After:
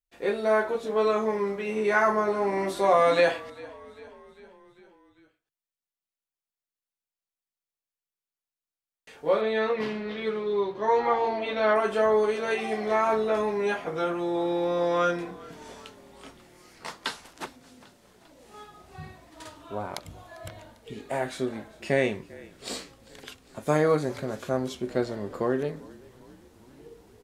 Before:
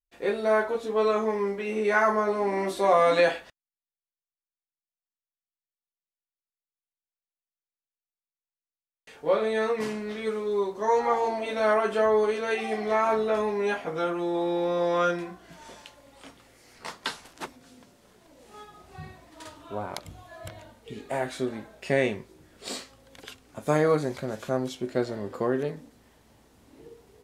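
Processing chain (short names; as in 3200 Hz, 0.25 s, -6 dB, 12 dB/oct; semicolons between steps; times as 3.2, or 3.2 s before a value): 9.41–11.76 resonant high shelf 5400 Hz -13 dB, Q 1.5; frequency-shifting echo 0.398 s, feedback 61%, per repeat -39 Hz, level -22 dB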